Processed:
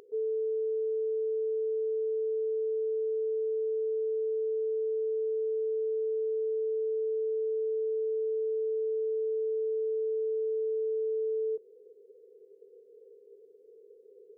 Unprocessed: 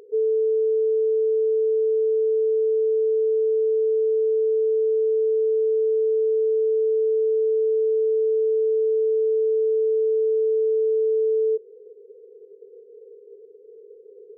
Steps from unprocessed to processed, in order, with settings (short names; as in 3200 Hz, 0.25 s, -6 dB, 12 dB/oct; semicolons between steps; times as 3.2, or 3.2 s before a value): bell 440 Hz -10 dB